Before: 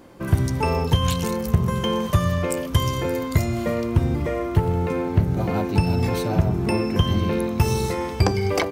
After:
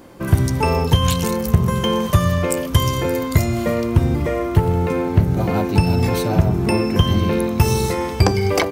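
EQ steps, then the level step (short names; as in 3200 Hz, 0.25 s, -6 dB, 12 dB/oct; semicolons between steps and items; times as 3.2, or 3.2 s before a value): high shelf 8100 Hz +4 dB; +4.0 dB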